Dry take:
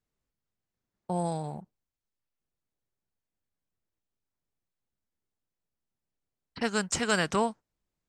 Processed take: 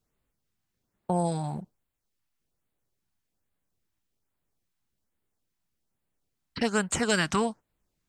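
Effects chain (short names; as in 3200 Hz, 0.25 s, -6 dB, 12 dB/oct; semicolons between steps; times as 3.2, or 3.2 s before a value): in parallel at +2 dB: compressor, threshold -34 dBFS, peak gain reduction 12 dB; on the sum: LFO notch sine 1.2 Hz 450–6100 Hz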